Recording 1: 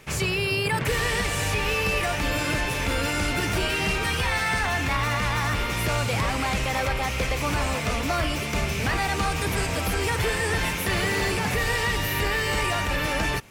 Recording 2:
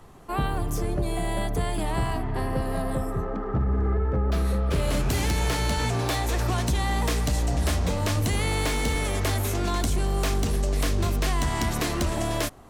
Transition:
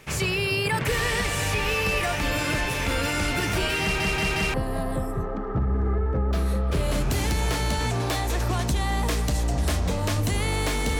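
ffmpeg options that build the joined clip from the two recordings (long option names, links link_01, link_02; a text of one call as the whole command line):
ffmpeg -i cue0.wav -i cue1.wav -filter_complex "[0:a]apad=whole_dur=10.99,atrim=end=10.99,asplit=4[link_01][link_02][link_03][link_04];[link_01]atrim=end=4.002[link_05];[link_02]atrim=start=3.818:end=4.002[link_06];[link_03]atrim=start=3.818:end=4.002[link_07];[link_04]atrim=start=3.818:end=4.002[link_08];[1:a]atrim=start=2.528:end=8.98[link_09];[link_05][link_06]acrossfade=duration=0.004:curve1=hsin:curve2=hsin[link_10];[link_10][link_07]acrossfade=duration=0.004:curve1=hsin:curve2=hsin[link_11];[link_11][link_08]acrossfade=duration=0.004:curve1=hsin:curve2=hsin[link_12];[link_12][link_09]acrossfade=duration=0.004:curve1=hsin:curve2=hsin" out.wav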